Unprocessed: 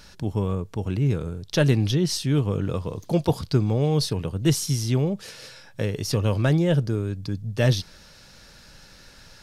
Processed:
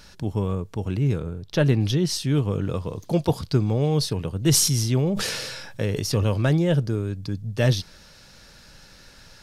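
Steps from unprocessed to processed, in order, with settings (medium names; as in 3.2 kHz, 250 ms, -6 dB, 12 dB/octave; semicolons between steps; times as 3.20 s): 1.20–1.81 s: peaking EQ 8.4 kHz -8 dB 2.1 oct; 4.40–6.24 s: decay stretcher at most 30 dB/s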